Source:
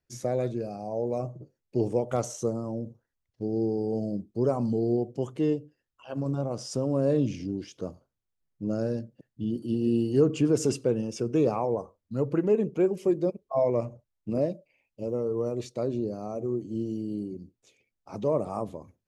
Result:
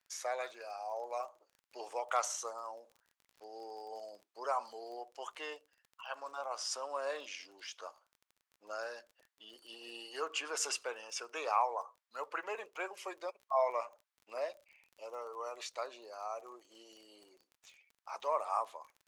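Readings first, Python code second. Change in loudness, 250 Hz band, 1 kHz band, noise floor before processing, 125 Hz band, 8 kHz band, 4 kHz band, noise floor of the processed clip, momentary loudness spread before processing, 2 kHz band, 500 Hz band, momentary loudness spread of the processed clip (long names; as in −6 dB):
−11.0 dB, −31.5 dB, +1.5 dB, −83 dBFS, below −40 dB, 0.0 dB, +2.0 dB, below −85 dBFS, 12 LU, +5.5 dB, −13.5 dB, 18 LU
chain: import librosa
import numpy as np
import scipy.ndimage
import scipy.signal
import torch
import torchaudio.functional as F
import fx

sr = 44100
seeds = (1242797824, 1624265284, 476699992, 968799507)

y = scipy.signal.sosfilt(scipy.signal.butter(4, 950.0, 'highpass', fs=sr, output='sos'), x)
y = fx.high_shelf(y, sr, hz=3800.0, db=-9.5)
y = fx.dmg_crackle(y, sr, seeds[0], per_s=28.0, level_db=-56.0)
y = y * librosa.db_to_amplitude(7.5)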